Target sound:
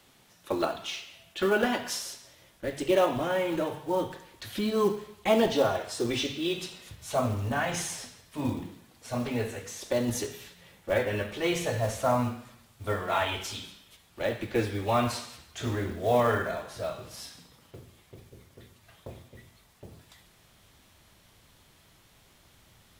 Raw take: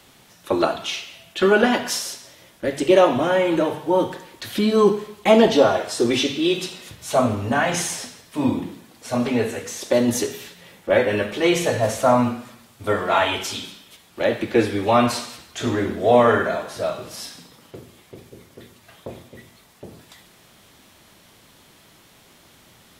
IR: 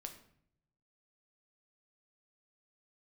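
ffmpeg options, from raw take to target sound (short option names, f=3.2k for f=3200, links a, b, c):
-af "asubboost=boost=3:cutoff=120,acrusher=bits=6:mode=log:mix=0:aa=0.000001,volume=-8.5dB"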